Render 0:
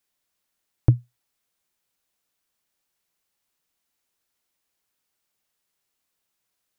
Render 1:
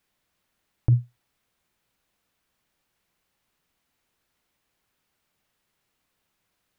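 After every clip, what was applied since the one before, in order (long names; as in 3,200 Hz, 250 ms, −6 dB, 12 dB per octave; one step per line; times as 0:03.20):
bass and treble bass +5 dB, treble −8 dB
in parallel at −0.5 dB: compressor whose output falls as the input rises −17 dBFS, ratio −0.5
on the sum: brickwall limiter −9.5 dBFS, peak gain reduction 9 dB
level −2.5 dB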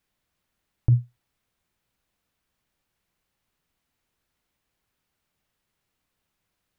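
low-shelf EQ 150 Hz +6.5 dB
level −3.5 dB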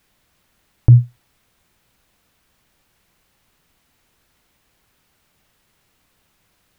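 boost into a limiter +16 dB
level −1 dB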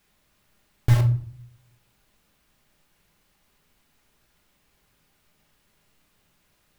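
in parallel at −4 dB: wrap-around overflow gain 16.5 dB
on the sum: rectangular room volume 610 cubic metres, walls furnished, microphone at 1.3 metres
level −8.5 dB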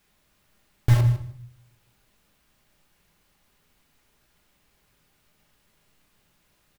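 repeating echo 154 ms, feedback 15%, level −13 dB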